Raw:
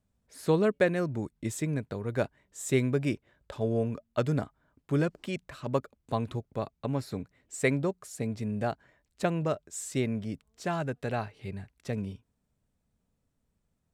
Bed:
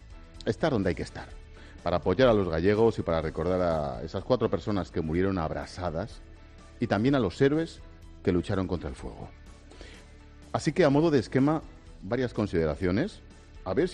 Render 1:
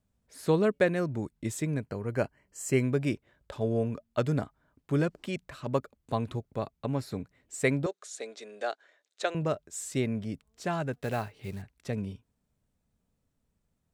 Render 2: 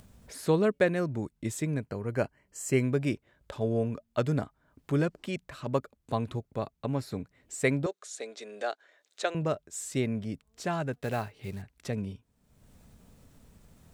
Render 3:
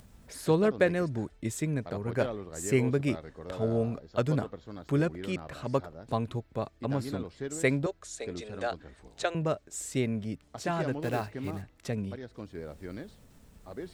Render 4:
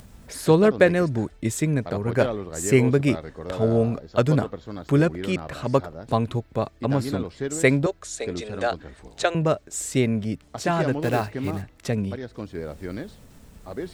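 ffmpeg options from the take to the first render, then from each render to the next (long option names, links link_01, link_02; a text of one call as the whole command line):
ffmpeg -i in.wav -filter_complex "[0:a]asettb=1/sr,asplit=3[link_01][link_02][link_03];[link_01]atrim=end=1.844[link_04];[link_02]atrim=start=1.84:end=2.84,asetpts=PTS-STARTPTS,afade=type=in:duration=0.004:curve=qsin,afade=type=out:start_time=0.996:duration=0.004:curve=qsin,asuperstop=centerf=3600:order=20:qfactor=5.1[link_05];[link_03]atrim=start=2.836[link_06];[link_04][link_05]acrossfade=duration=0.004:curve1=hsin:curve2=qsin[link_07];[link_07][link_06]acrossfade=duration=0.004:curve1=qsin:curve2=hsin,asettb=1/sr,asplit=3[link_08][link_09][link_10];[link_08]atrim=end=7.864[link_11];[link_09]atrim=start=7.86:end=9.35,asetpts=PTS-STARTPTS,afade=type=in:duration=0.004:curve=qsin,afade=type=out:start_time=1.486:duration=0.004:curve=qsin,highpass=frequency=410:width=0.5412,highpass=frequency=410:width=1.3066,equalizer=frequency=940:width_type=q:width=4:gain=-6,equalizer=frequency=1500:width_type=q:width=4:gain=3,equalizer=frequency=3700:width_type=q:width=4:gain=9,equalizer=frequency=6400:width_type=q:width=4:gain=5,lowpass=frequency=9100:width=0.5412,lowpass=frequency=9100:width=1.3066[link_12];[link_10]atrim=start=9.346[link_13];[link_11][link_12]acrossfade=duration=0.004:curve1=hsin:curve2=qsin[link_14];[link_14][link_13]acrossfade=duration=0.004:curve1=qsin:curve2=hsin,asettb=1/sr,asplit=3[link_15][link_16][link_17];[link_15]atrim=end=10.934[link_18];[link_16]atrim=start=10.93:end=11.62,asetpts=PTS-STARTPTS,afade=type=in:duration=0.004:curve=qsin,afade=type=out:start_time=0.686:duration=0.004:curve=qsin,acrusher=bits=5:mode=log:mix=0:aa=0.000001[link_19];[link_17]atrim=start=11.616[link_20];[link_18][link_19]acrossfade=duration=0.004:curve1=hsin:curve2=qsin[link_21];[link_21][link_20]acrossfade=duration=0.004:curve1=qsin:curve2=hsin" out.wav
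ffmpeg -i in.wav -af "acompressor=mode=upward:threshold=-38dB:ratio=2.5" out.wav
ffmpeg -i in.wav -i bed.wav -filter_complex "[1:a]volume=-14.5dB[link_01];[0:a][link_01]amix=inputs=2:normalize=0" out.wav
ffmpeg -i in.wav -af "volume=8dB" out.wav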